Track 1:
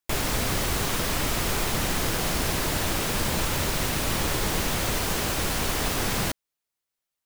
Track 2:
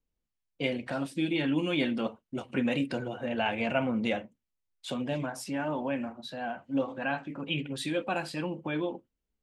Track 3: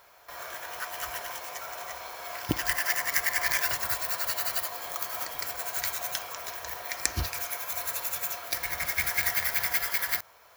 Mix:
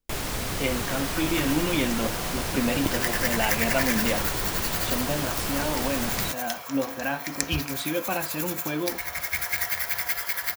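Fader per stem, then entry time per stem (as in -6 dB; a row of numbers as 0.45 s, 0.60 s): -4.0 dB, +2.5 dB, 0.0 dB; 0.00 s, 0.00 s, 0.35 s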